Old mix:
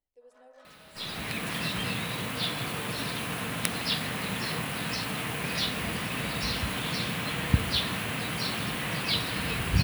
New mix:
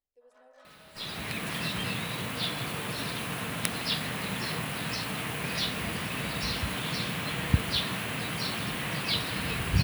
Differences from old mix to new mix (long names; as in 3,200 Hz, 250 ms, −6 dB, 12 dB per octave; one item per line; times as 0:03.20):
speech −4.5 dB
second sound: send off